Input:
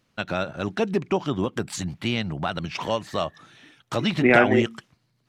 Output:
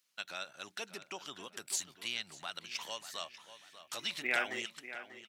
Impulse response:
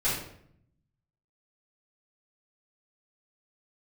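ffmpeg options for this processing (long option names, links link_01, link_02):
-filter_complex "[0:a]aderivative,asplit=2[link_01][link_02];[link_02]adelay=591,lowpass=frequency=3300:poles=1,volume=-12dB,asplit=2[link_03][link_04];[link_04]adelay=591,lowpass=frequency=3300:poles=1,volume=0.37,asplit=2[link_05][link_06];[link_06]adelay=591,lowpass=frequency=3300:poles=1,volume=0.37,asplit=2[link_07][link_08];[link_08]adelay=591,lowpass=frequency=3300:poles=1,volume=0.37[link_09];[link_01][link_03][link_05][link_07][link_09]amix=inputs=5:normalize=0"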